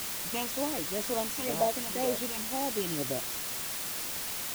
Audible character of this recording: phasing stages 8, 2 Hz, lowest notch 540–2700 Hz; a quantiser's noise floor 6-bit, dither triangular

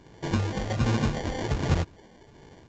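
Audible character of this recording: phasing stages 12, 1.3 Hz, lowest notch 110–2400 Hz; aliases and images of a low sample rate 1300 Hz, jitter 0%; µ-law

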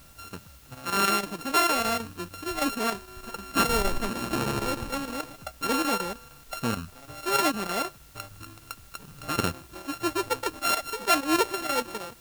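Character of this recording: a buzz of ramps at a fixed pitch in blocks of 32 samples; chopped level 6.5 Hz, depth 60%, duty 85%; a quantiser's noise floor 10-bit, dither triangular

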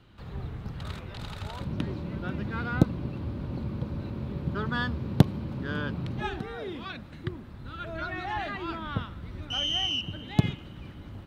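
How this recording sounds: noise floor -45 dBFS; spectral tilt -4.5 dB/oct

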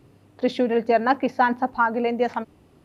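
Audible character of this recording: noise floor -56 dBFS; spectral tilt -3.0 dB/oct

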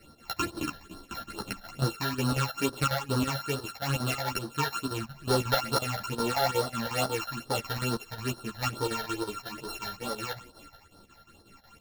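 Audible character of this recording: a buzz of ramps at a fixed pitch in blocks of 32 samples; phasing stages 8, 2.3 Hz, lowest notch 320–2500 Hz; chopped level 5.5 Hz, depth 65%, duty 75%; a shimmering, thickened sound

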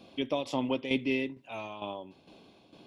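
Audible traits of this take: tremolo saw down 2.2 Hz, depth 65%

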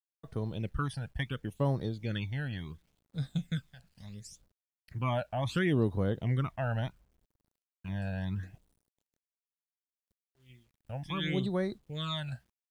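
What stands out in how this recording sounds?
phasing stages 12, 0.71 Hz, lowest notch 350–2600 Hz; a quantiser's noise floor 12-bit, dither none

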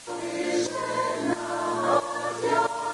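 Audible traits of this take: tremolo saw up 1.5 Hz, depth 80%; a quantiser's noise floor 8-bit, dither triangular; Vorbis

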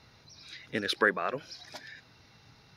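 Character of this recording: noise floor -60 dBFS; spectral tilt -3.5 dB/oct

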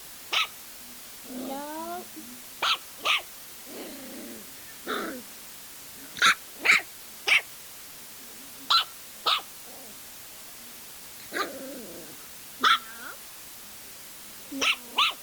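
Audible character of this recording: phasing stages 12, 0.14 Hz, lowest notch 800–2000 Hz; a quantiser's noise floor 8-bit, dither triangular; Opus

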